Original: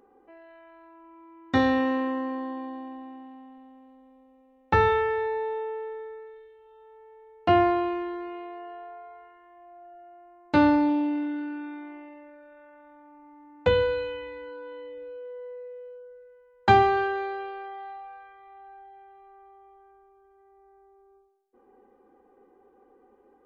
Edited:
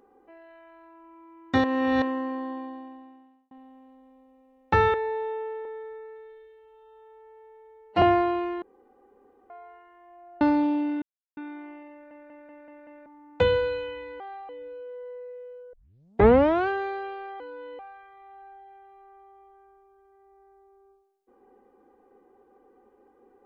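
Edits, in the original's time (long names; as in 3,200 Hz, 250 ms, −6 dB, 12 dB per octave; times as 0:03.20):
0:01.64–0:02.02: reverse
0:02.54–0:03.51: fade out
0:04.94–0:05.22: remove
0:05.93–0:07.51: time-stretch 1.5×
0:08.11–0:08.99: fill with room tone
0:09.90–0:10.67: remove
0:11.28–0:11.63: silence
0:12.18: stutter in place 0.19 s, 6 plays
0:14.46–0:14.85: swap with 0:17.76–0:18.05
0:16.09: tape start 0.95 s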